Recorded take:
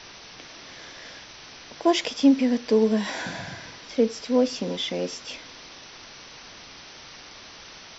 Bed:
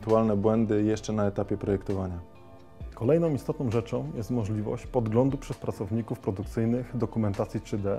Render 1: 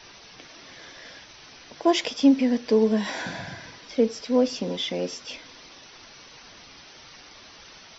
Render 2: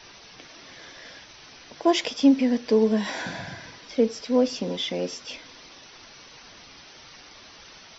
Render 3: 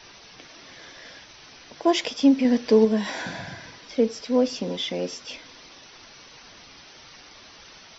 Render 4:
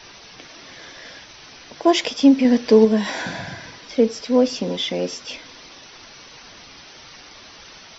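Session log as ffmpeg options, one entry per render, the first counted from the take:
-af "afftdn=nr=6:nf=-45"
-af anull
-filter_complex "[0:a]asplit=3[a][b][c];[a]atrim=end=2.452[d];[b]atrim=start=2.448:end=2.852,asetpts=PTS-STARTPTS,volume=3dB[e];[c]atrim=start=2.848[f];[d][e]acrossfade=d=0.004:c1=hsin:c2=hsin[g];[g][f]acrossfade=d=0.004:c1=hsin:c2=hsin"
-af "volume=4.5dB"

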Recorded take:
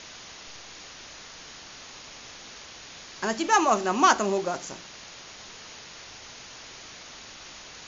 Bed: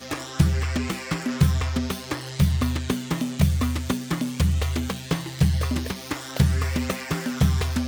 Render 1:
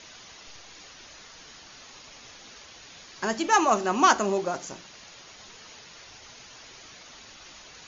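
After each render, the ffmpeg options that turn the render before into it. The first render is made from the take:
-af "afftdn=nr=6:nf=-45"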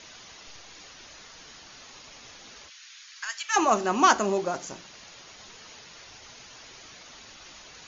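-filter_complex "[0:a]asplit=3[a][b][c];[a]afade=t=out:st=2.68:d=0.02[d];[b]highpass=f=1.4k:w=0.5412,highpass=f=1.4k:w=1.3066,afade=t=in:st=2.68:d=0.02,afade=t=out:st=3.55:d=0.02[e];[c]afade=t=in:st=3.55:d=0.02[f];[d][e][f]amix=inputs=3:normalize=0"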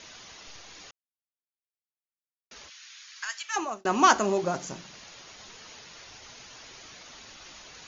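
-filter_complex "[0:a]asettb=1/sr,asplit=3[a][b][c];[a]atrim=end=4.434[d];[b]atrim=start=4.43:end=4.99,asetpts=PTS-STARTPTS,afade=t=in:d=0.004:c=qsin,afade=t=out:st=0.556:d=0.004:c=qsin,equalizer=f=160:w=1.5:g=7.5[e];[c]atrim=start=4.986[f];[d][e]acrossfade=d=0.004:c1=hsin:c2=qsin[g];[g][f]acrossfade=d=0.004:c1=qsin:c2=hsin,asplit=4[h][i][j][k];[h]atrim=end=0.91,asetpts=PTS-STARTPTS,afade=t=out:st=0.906:d=0.004:c=hsin[l];[i]atrim=start=0.91:end=2.51,asetpts=PTS-STARTPTS,volume=0[m];[j]atrim=start=2.51:end=3.85,asetpts=PTS-STARTPTS,afade=t=in:d=0.004:c=hsin,afade=t=out:st=0.74:d=0.6[n];[k]atrim=start=3.85,asetpts=PTS-STARTPTS,afade=t=in:d=0.004:c=hsin[o];[l][m][n][o]concat=n=4:v=0:a=1"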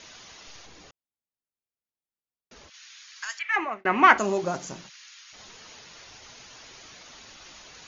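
-filter_complex "[0:a]asettb=1/sr,asplit=3[a][b][c];[a]atrim=end=0.664[d];[b]atrim=start=0.66:end=2.74,asetpts=PTS-STARTPTS,afade=t=in:d=0.004:c=qsin,afade=t=out:st=2.076:d=0.004:c=qsin,tiltshelf=f=830:g=5.5[e];[c]atrim=start=2.736[f];[d][e]acrossfade=d=0.004:c1=hsin:c2=qsin[g];[g][f]acrossfade=d=0.004:c1=qsin:c2=hsin,asettb=1/sr,asplit=3[h][i][j];[h]atrim=end=3.394[k];[i]atrim=start=3.39:end=4.18,asetpts=PTS-STARTPTS,afade=t=in:d=0.004:c=qsin,afade=t=out:st=0.786:d=0.004:c=qsin,lowpass=f=2.1k:t=q:w=7.2[l];[j]atrim=start=4.176[m];[k][l]acrossfade=d=0.004:c1=hsin:c2=qsin[n];[n][m]acrossfade=d=0.004:c1=qsin:c2=hsin,asplit=3[o][p][q];[o]afade=t=out:st=4.88:d=0.02[r];[p]highpass=f=1.4k:w=0.5412,highpass=f=1.4k:w=1.3066,afade=t=in:st=4.88:d=0.02,afade=t=out:st=5.32:d=0.02[s];[q]afade=t=in:st=5.32:d=0.02[t];[r][s][t]amix=inputs=3:normalize=0"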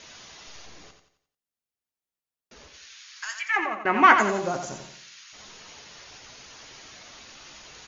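-filter_complex "[0:a]asplit=2[a][b];[b]adelay=14,volume=-12dB[c];[a][c]amix=inputs=2:normalize=0,aecho=1:1:88|176|264|352|440:0.422|0.169|0.0675|0.027|0.0108"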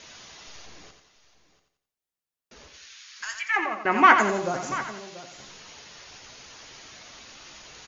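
-af "aecho=1:1:686:0.168"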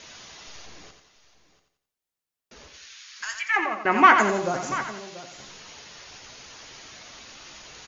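-af "volume=1.5dB,alimiter=limit=-3dB:level=0:latency=1"

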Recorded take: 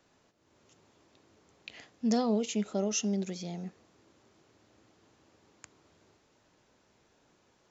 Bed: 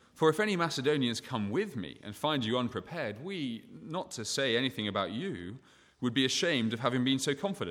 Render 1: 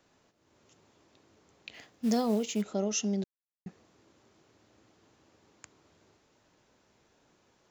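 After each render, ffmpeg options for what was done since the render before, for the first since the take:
-filter_complex "[0:a]asettb=1/sr,asplit=3[a][b][c];[a]atrim=end=1.744[d];[b]atrim=start=1.74:end=2.62,asetpts=PTS-STARTPTS,afade=t=in:d=0.004:c=qsin,afade=t=out:st=0.876:d=0.004:c=qsin,acrusher=bits=6:mode=log:mix=0:aa=0.000001[e];[c]atrim=start=2.616[f];[d][e]acrossfade=d=0.004:c1=hsin:c2=qsin[g];[g][f]acrossfade=d=0.004:c1=qsin:c2=hsin,asplit=3[h][i][j];[h]atrim=end=3.24,asetpts=PTS-STARTPTS,afade=t=out:st=3.236:d=0.004:c=hsin[k];[i]atrim=start=3.24:end=3.66,asetpts=PTS-STARTPTS,volume=0[l];[j]atrim=start=3.66,asetpts=PTS-STARTPTS,afade=t=in:d=0.004:c=hsin[m];[k][l][m]concat=n=3:v=0:a=1"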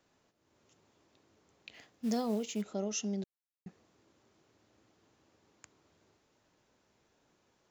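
-af "volume=-5dB"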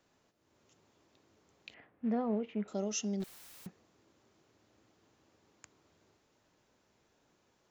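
-filter_complex "[0:a]asettb=1/sr,asplit=3[a][b][c];[a]atrim=end=1.744[d];[b]atrim=start=1.74:end=2.68,asetpts=PTS-STARTPTS,afade=t=in:d=0.004:c=qsin,afade=t=out:st=0.936:d=0.004:c=qsin,lowpass=f=2.2k:w=0.5412,lowpass=f=2.2k:w=1.3066[e];[c]atrim=start=2.676[f];[d][e]acrossfade=d=0.004:c1=hsin:c2=qsin[g];[g][f]acrossfade=d=0.004:c1=qsin:c2=hsin,asettb=1/sr,asplit=3[h][i][j];[h]atrim=end=3.204[k];[i]atrim=start=3.2:end=3.67,asetpts=PTS-STARTPTS,afade=t=in:d=0.004:c=qsin,afade=t=out:st=0.466:d=0.004:c=qsin,aeval=exprs='val(0)+0.5*0.00631*sgn(val(0))':c=same[l];[j]atrim=start=3.666[m];[k][l]acrossfade=d=0.004:c1=hsin:c2=qsin[n];[n][m]acrossfade=d=0.004:c1=qsin:c2=hsin"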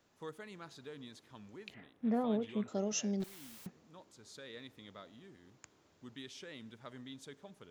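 -filter_complex "[1:a]volume=-20.5dB[a];[0:a][a]amix=inputs=2:normalize=0"

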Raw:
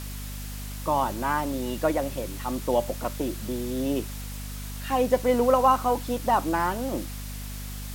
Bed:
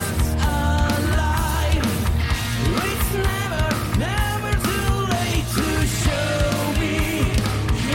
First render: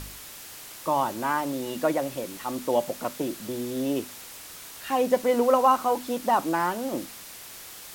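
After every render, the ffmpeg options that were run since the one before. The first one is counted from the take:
-af "bandreject=f=50:t=h:w=4,bandreject=f=100:t=h:w=4,bandreject=f=150:t=h:w=4,bandreject=f=200:t=h:w=4,bandreject=f=250:t=h:w=4"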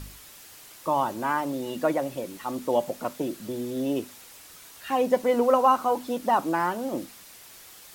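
-af "afftdn=nr=6:nf=-43"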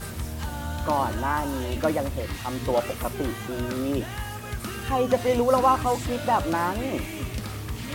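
-filter_complex "[1:a]volume=-12dB[a];[0:a][a]amix=inputs=2:normalize=0"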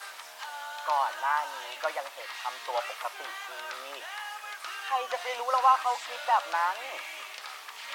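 -filter_complex "[0:a]acrossover=split=6100[a][b];[b]acompressor=threshold=-55dB:ratio=4:attack=1:release=60[c];[a][c]amix=inputs=2:normalize=0,highpass=f=770:w=0.5412,highpass=f=770:w=1.3066"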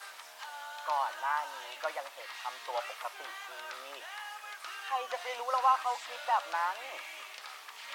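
-af "volume=-4.5dB"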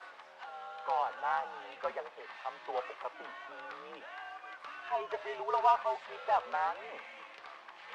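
-af "adynamicsmooth=sensitivity=1.5:basefreq=2.3k,afreqshift=-87"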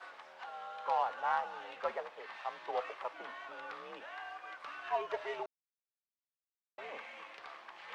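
-filter_complex "[0:a]asplit=3[a][b][c];[a]atrim=end=5.46,asetpts=PTS-STARTPTS,afade=t=out:st=5.456:d=0.004:c=hsin[d];[b]atrim=start=5.46:end=6.78,asetpts=PTS-STARTPTS,volume=0[e];[c]atrim=start=6.78,asetpts=PTS-STARTPTS,afade=t=in:d=0.004:c=hsin[f];[d][e][f]concat=n=3:v=0:a=1"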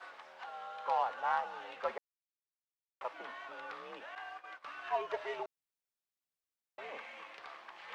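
-filter_complex "[0:a]asettb=1/sr,asplit=3[a][b][c];[a]atrim=end=4.154[d];[b]atrim=start=4.15:end=4.77,asetpts=PTS-STARTPTS,afade=t=in:d=0.004:c=qsin,afade=t=out:st=0.616:d=0.004:c=qsin,agate=range=-33dB:threshold=-46dB:ratio=3:release=100:detection=peak[e];[c]atrim=start=4.766[f];[d][e]acrossfade=d=0.004:c1=hsin:c2=qsin[g];[g][f]acrossfade=d=0.004:c1=qsin:c2=hsin,asplit=3[h][i][j];[h]atrim=end=1.98,asetpts=PTS-STARTPTS,afade=t=out:st=1.976:d=0.004:c=hsin[k];[i]atrim=start=1.98:end=3.01,asetpts=PTS-STARTPTS,volume=0[l];[j]atrim=start=3.01,asetpts=PTS-STARTPTS,afade=t=in:d=0.004:c=hsin[m];[k][l][m]concat=n=3:v=0:a=1"

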